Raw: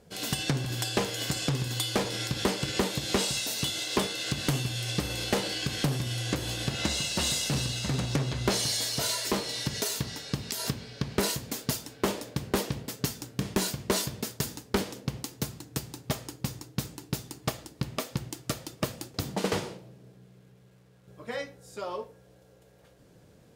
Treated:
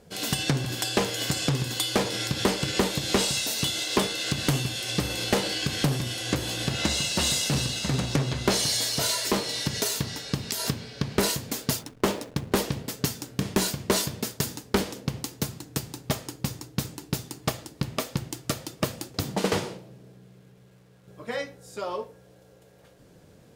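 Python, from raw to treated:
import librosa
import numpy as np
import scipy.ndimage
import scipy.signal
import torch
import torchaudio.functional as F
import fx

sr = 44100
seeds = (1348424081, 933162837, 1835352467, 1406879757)

y = fx.backlash(x, sr, play_db=-40.0, at=(11.79, 12.52))
y = fx.hum_notches(y, sr, base_hz=60, count=2)
y = F.gain(torch.from_numpy(y), 3.5).numpy()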